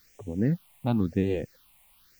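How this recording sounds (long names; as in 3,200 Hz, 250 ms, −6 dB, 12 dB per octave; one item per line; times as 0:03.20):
a quantiser's noise floor 10 bits, dither triangular
phaser sweep stages 6, 0.96 Hz, lowest notch 390–1,300 Hz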